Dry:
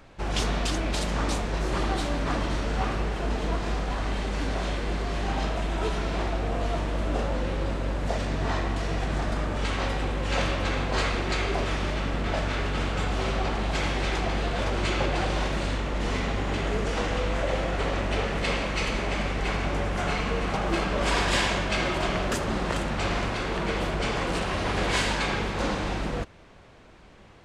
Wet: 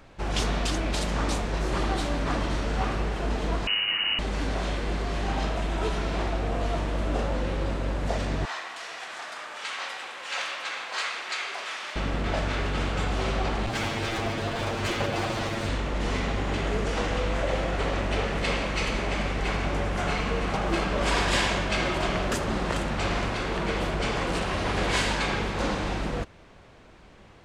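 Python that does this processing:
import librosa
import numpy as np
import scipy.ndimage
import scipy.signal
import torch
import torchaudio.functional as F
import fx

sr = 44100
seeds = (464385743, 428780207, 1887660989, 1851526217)

y = fx.freq_invert(x, sr, carrier_hz=2900, at=(3.67, 4.19))
y = fx.highpass(y, sr, hz=1100.0, slope=12, at=(8.45, 11.96))
y = fx.lower_of_two(y, sr, delay_ms=8.8, at=(13.66, 15.69))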